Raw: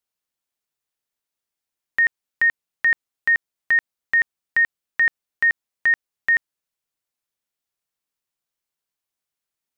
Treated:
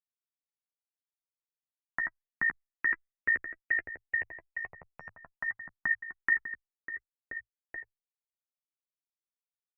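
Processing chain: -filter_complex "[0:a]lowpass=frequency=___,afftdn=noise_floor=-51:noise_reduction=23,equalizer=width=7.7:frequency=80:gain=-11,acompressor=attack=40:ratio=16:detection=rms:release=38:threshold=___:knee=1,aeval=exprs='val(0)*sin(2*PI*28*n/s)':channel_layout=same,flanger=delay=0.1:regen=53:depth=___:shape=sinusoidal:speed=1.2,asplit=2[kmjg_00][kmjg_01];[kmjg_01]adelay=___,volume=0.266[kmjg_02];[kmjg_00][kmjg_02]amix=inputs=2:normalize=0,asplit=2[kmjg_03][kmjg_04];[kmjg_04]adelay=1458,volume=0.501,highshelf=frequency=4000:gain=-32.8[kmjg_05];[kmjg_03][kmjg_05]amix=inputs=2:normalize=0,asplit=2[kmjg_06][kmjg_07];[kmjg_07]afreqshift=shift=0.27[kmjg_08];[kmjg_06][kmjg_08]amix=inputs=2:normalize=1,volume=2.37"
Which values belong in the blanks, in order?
1400, 0.0562, 3, 12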